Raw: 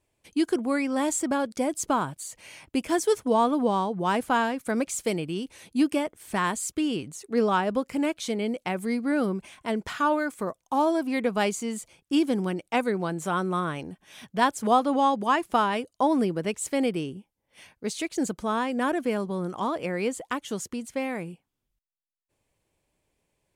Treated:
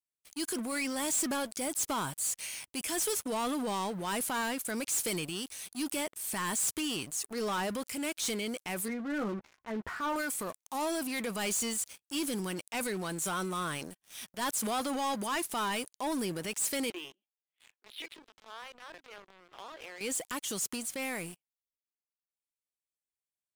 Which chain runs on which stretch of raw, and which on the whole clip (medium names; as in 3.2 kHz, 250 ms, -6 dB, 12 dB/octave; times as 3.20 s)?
8.88–10.16 s: inverse Chebyshev low-pass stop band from 5.8 kHz, stop band 60 dB + doubling 14 ms -7 dB
16.90–20.01 s: LPC vocoder at 8 kHz pitch kept + compression 4:1, threshold -33 dBFS + steep high-pass 290 Hz
whole clip: pre-emphasis filter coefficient 0.9; transient shaper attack -6 dB, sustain +5 dB; waveshaping leveller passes 5; trim -7.5 dB